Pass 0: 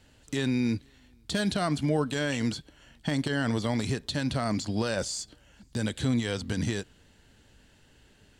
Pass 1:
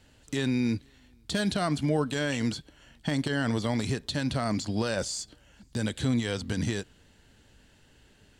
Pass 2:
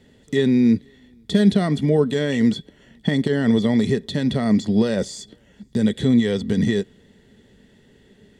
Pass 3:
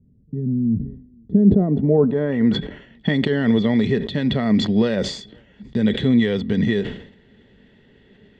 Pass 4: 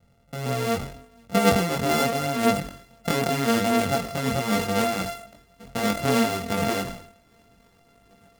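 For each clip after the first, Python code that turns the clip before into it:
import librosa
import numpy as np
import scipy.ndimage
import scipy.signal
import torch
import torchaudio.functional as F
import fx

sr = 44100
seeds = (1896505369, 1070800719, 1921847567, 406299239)

y1 = x
y2 = fx.small_body(y1, sr, hz=(210.0, 400.0, 1900.0, 3400.0), ring_ms=30, db=16)
y2 = y2 * 10.0 ** (-2.0 / 20.0)
y3 = fx.filter_sweep_lowpass(y2, sr, from_hz=160.0, to_hz=2900.0, start_s=0.92, end_s=2.89, q=1.2)
y3 = fx.sustainer(y3, sr, db_per_s=92.0)
y4 = np.r_[np.sort(y3[:len(y3) // 64 * 64].reshape(-1, 64), axis=1).ravel(), y3[len(y3) // 64 * 64:]]
y4 = fx.chorus_voices(y4, sr, voices=2, hz=0.8, base_ms=22, depth_ms=1.8, mix_pct=45)
y4 = y4 * 10.0 ** (-2.5 / 20.0)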